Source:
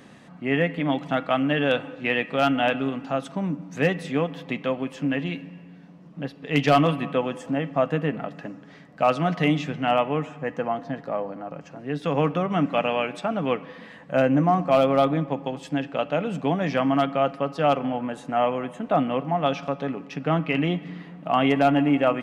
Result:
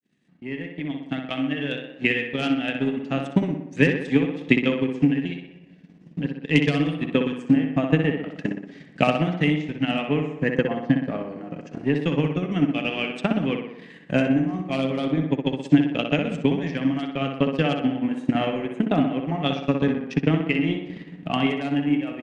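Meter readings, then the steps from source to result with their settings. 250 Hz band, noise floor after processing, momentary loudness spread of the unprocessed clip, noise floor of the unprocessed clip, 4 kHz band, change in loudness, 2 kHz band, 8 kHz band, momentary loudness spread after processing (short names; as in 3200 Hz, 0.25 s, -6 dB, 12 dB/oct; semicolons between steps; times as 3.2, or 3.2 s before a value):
+3.5 dB, -48 dBFS, 11 LU, -47 dBFS, +1.5 dB, +0.5 dB, +1.5 dB, n/a, 10 LU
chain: opening faded in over 3.85 s; HPF 110 Hz; band shelf 850 Hz -11.5 dB; vocal rider within 4 dB 0.5 s; transient shaper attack +12 dB, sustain -11 dB; tape echo 62 ms, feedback 65%, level -4.5 dB, low-pass 3100 Hz; downsampling 22050 Hz; gain -1 dB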